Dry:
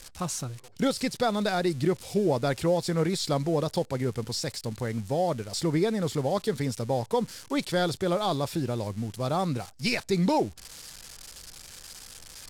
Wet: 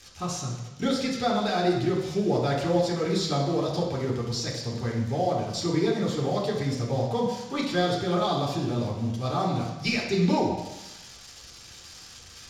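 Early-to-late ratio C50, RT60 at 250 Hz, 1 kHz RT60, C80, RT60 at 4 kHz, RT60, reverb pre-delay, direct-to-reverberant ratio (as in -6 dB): 3.0 dB, 1.1 s, 1.1 s, 6.0 dB, 1.1 s, 1.0 s, 3 ms, -4.0 dB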